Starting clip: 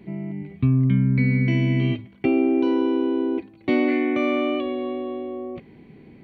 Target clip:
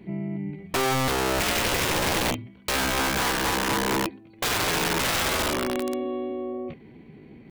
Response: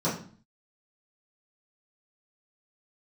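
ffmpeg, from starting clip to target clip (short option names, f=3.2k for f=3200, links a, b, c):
-af "aeval=exprs='(mod(9.44*val(0)+1,2)-1)/9.44':c=same,atempo=0.83"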